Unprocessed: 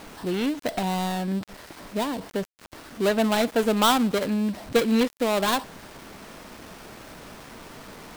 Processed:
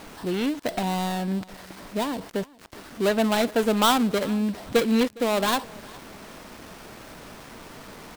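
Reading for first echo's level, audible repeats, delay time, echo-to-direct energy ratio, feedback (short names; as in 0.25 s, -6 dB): -23.0 dB, 2, 0.41 s, -22.5 dB, 30%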